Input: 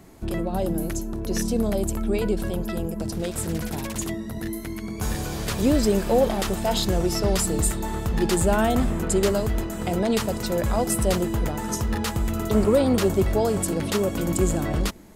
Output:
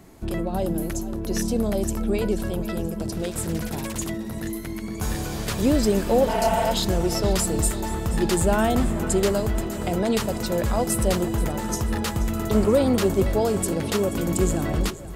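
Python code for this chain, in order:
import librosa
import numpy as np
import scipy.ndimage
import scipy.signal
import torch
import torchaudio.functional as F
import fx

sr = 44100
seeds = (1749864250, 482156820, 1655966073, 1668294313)

y = fx.spec_repair(x, sr, seeds[0], start_s=6.31, length_s=0.33, low_hz=200.0, high_hz=4000.0, source='after')
y = fx.echo_split(y, sr, split_hz=300.0, low_ms=308, high_ms=481, feedback_pct=52, wet_db=-15.5)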